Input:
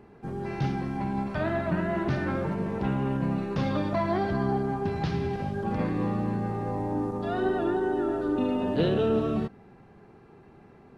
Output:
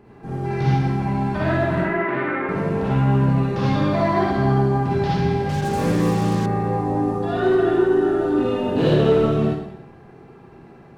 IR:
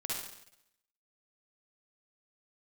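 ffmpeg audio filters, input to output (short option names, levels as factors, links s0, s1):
-filter_complex "[0:a]asoftclip=type=hard:threshold=0.106,asettb=1/sr,asplit=3[s0][s1][s2];[s0]atrim=end=1.784[s3];[s1]atrim=start=1.78:end=2.49,asetpts=PTS-STARTPTS,afade=t=in:d=0.004:c=qsin,afade=t=out:st=0.706:d=0.004:c=qsin,highpass=330,equalizer=f=400:t=q:w=4:g=4,equalizer=f=670:t=q:w=4:g=-5,equalizer=f=1300:t=q:w=4:g=3,equalizer=f=2100:t=q:w=4:g=8,lowpass=f=2700:w=0.5412,lowpass=f=2700:w=1.3066[s4];[s2]atrim=start=2.486[s5];[s3][s4]acrossfade=d=0.004:c1=hsin:c2=qsin[s6];[s6][s5]acrossfade=d=0.004:c1=qsin:c2=hsin[s7];[1:a]atrim=start_sample=2205[s8];[s7][s8]afir=irnorm=-1:irlink=0,asettb=1/sr,asplit=3[s9][s10][s11];[s9]atrim=end=5.494[s12];[s10]atrim=start=5.49:end=6.46,asetpts=PTS-STARTPTS,afade=t=in:d=0.004:c=qsin,afade=t=out:st=0.966:d=0.004:c=qsin,acrusher=bits=5:mix=0:aa=0.5[s13];[s11]atrim=start=6.456[s14];[s12][s13]acrossfade=d=0.004:c1=hsin:c2=qsin[s15];[s15][s14]acrossfade=d=0.004:c1=qsin:c2=hsin,volume=1.88"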